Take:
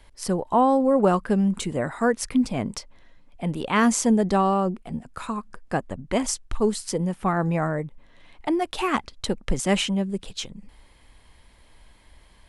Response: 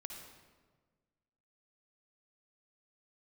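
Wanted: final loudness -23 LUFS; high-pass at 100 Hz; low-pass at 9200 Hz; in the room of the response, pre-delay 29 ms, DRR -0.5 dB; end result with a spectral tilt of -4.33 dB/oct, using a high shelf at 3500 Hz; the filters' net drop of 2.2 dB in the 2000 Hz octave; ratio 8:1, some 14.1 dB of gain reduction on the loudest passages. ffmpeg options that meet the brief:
-filter_complex "[0:a]highpass=100,lowpass=9.2k,equalizer=f=2k:t=o:g=-4.5,highshelf=f=3.5k:g=6,acompressor=threshold=-30dB:ratio=8,asplit=2[a][b];[1:a]atrim=start_sample=2205,adelay=29[c];[b][c]afir=irnorm=-1:irlink=0,volume=3.5dB[d];[a][d]amix=inputs=2:normalize=0,volume=8.5dB"

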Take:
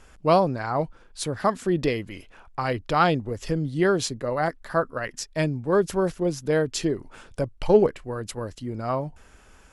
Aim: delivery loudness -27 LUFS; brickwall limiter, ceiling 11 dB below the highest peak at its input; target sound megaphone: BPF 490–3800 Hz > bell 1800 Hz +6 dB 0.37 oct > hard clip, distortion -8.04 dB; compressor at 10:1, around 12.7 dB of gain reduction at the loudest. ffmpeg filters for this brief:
-af "acompressor=threshold=-24dB:ratio=10,alimiter=level_in=0.5dB:limit=-24dB:level=0:latency=1,volume=-0.5dB,highpass=490,lowpass=3.8k,equalizer=f=1.8k:t=o:w=0.37:g=6,asoftclip=type=hard:threshold=-35.5dB,volume=14.5dB"

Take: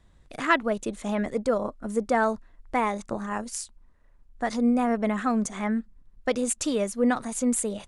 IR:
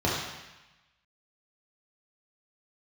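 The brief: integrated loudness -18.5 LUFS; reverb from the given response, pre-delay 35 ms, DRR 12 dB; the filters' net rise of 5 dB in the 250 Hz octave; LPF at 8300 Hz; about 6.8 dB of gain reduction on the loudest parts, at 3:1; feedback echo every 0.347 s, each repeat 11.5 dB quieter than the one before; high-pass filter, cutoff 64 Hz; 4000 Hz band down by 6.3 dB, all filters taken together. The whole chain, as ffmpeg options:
-filter_complex "[0:a]highpass=64,lowpass=8.3k,equalizer=f=250:t=o:g=5.5,equalizer=f=4k:t=o:g=-8.5,acompressor=threshold=-23dB:ratio=3,aecho=1:1:347|694|1041:0.266|0.0718|0.0194,asplit=2[a][b];[1:a]atrim=start_sample=2205,adelay=35[c];[b][c]afir=irnorm=-1:irlink=0,volume=-25.5dB[d];[a][d]amix=inputs=2:normalize=0,volume=9.5dB"

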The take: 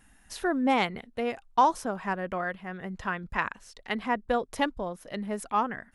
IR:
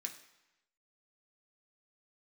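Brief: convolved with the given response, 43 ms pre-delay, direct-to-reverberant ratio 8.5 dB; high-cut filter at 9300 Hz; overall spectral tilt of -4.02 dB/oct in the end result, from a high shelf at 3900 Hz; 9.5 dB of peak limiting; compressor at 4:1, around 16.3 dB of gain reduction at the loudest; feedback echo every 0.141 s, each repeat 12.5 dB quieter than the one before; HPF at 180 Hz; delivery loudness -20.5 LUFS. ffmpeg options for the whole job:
-filter_complex "[0:a]highpass=180,lowpass=9.3k,highshelf=f=3.9k:g=-8.5,acompressor=threshold=-37dB:ratio=4,alimiter=level_in=7.5dB:limit=-24dB:level=0:latency=1,volume=-7.5dB,aecho=1:1:141|282|423:0.237|0.0569|0.0137,asplit=2[a][b];[1:a]atrim=start_sample=2205,adelay=43[c];[b][c]afir=irnorm=-1:irlink=0,volume=-6dB[d];[a][d]amix=inputs=2:normalize=0,volume=22dB"

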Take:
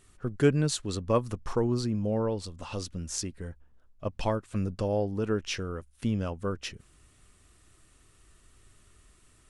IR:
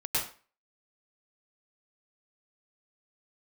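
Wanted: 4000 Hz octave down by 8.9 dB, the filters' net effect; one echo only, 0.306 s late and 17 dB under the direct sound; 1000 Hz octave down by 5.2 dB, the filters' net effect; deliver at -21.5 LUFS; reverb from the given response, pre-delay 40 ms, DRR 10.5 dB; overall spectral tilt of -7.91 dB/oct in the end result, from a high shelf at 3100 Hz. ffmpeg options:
-filter_complex "[0:a]equalizer=f=1k:t=o:g=-5.5,highshelf=f=3.1k:g=-5.5,equalizer=f=4k:t=o:g=-7,aecho=1:1:306:0.141,asplit=2[a][b];[1:a]atrim=start_sample=2205,adelay=40[c];[b][c]afir=irnorm=-1:irlink=0,volume=-18.5dB[d];[a][d]amix=inputs=2:normalize=0,volume=10dB"

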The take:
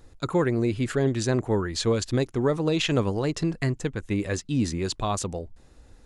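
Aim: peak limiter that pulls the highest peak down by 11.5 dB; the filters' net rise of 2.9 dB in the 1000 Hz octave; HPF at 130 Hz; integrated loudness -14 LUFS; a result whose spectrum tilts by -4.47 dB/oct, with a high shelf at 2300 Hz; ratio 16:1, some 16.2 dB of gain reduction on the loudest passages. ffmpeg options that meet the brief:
-af "highpass=130,equalizer=f=1k:t=o:g=3,highshelf=f=2.3k:g=3.5,acompressor=threshold=-34dB:ratio=16,volume=26.5dB,alimiter=limit=-2dB:level=0:latency=1"

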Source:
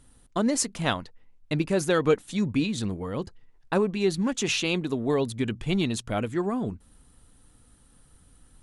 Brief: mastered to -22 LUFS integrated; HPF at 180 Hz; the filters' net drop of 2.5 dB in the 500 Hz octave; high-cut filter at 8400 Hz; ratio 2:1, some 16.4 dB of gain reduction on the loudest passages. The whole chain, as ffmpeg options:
-af "highpass=180,lowpass=8.4k,equalizer=f=500:t=o:g=-3,acompressor=threshold=-52dB:ratio=2,volume=21.5dB"

